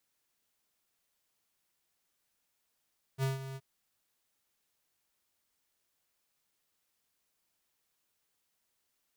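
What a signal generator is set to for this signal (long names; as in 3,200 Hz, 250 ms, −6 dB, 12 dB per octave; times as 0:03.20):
note with an ADSR envelope square 134 Hz, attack 51 ms, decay 150 ms, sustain −12.5 dB, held 0.38 s, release 43 ms −29.5 dBFS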